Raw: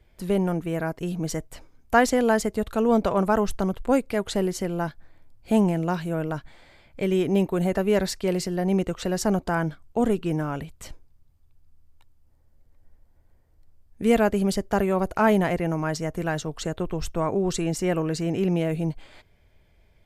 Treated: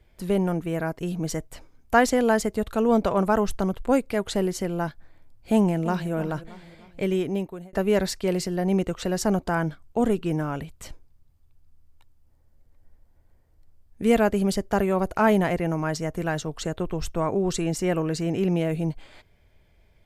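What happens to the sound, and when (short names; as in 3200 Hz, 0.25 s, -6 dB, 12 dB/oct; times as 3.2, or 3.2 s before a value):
5.54–6.12 echo throw 0.31 s, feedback 45%, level -14.5 dB
7.02–7.73 fade out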